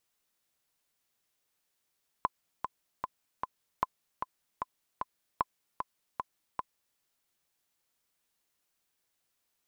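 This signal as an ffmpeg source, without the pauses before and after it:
-f lavfi -i "aevalsrc='pow(10,(-13.5-6*gte(mod(t,4*60/152),60/152))/20)*sin(2*PI*1020*mod(t,60/152))*exp(-6.91*mod(t,60/152)/0.03)':d=4.73:s=44100"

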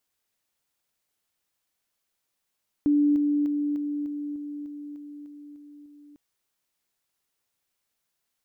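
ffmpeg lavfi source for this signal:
-f lavfi -i "aevalsrc='pow(10,(-17.5-3*floor(t/0.3))/20)*sin(2*PI*292*t)':d=3.3:s=44100"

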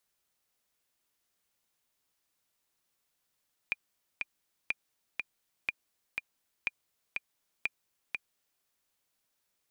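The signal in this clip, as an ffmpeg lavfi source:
-f lavfi -i "aevalsrc='pow(10,(-16.5-3.5*gte(mod(t,2*60/122),60/122))/20)*sin(2*PI*2410*mod(t,60/122))*exp(-6.91*mod(t,60/122)/0.03)':d=4.91:s=44100"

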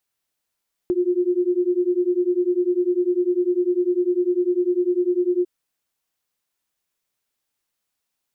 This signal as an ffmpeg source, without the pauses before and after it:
-f lavfi -i "aevalsrc='0.0944*(sin(2*PI*352*t)+sin(2*PI*362*t))':d=4.55:s=44100"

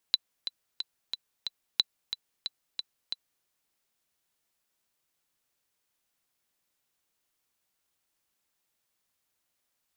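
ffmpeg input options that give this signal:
-f lavfi -i "aevalsrc='pow(10,(-8.5-10.5*gte(mod(t,5*60/181),60/181))/20)*sin(2*PI*3990*mod(t,60/181))*exp(-6.91*mod(t,60/181)/0.03)':d=3.31:s=44100"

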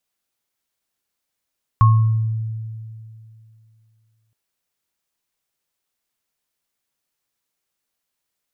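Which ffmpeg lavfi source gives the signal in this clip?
-f lavfi -i "aevalsrc='0.398*pow(10,-3*t/2.63)*sin(2*PI*111*t)+0.224*pow(10,-3*t/0.54)*sin(2*PI*1090*t)':d=2.52:s=44100"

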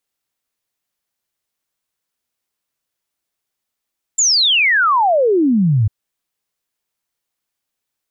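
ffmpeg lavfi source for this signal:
-f lavfi -i "aevalsrc='0.299*clip(min(t,1.7-t)/0.01,0,1)*sin(2*PI*7400*1.7/log(98/7400)*(exp(log(98/7400)*t/1.7)-1))':d=1.7:s=44100"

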